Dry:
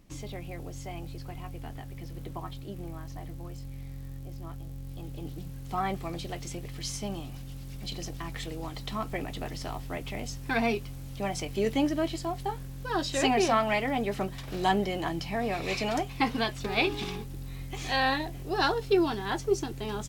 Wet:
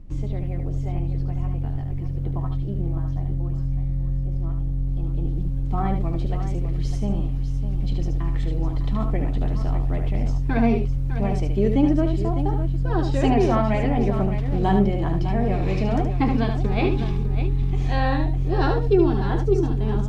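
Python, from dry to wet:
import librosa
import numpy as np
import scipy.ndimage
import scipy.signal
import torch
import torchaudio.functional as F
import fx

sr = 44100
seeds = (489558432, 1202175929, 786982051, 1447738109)

y = fx.tilt_eq(x, sr, slope=-4.0)
y = fx.echo_multitap(y, sr, ms=(74, 604), db=(-6.5, -10.0))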